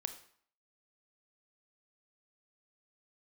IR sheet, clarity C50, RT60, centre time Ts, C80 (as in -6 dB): 11.0 dB, 0.55 s, 9 ms, 14.5 dB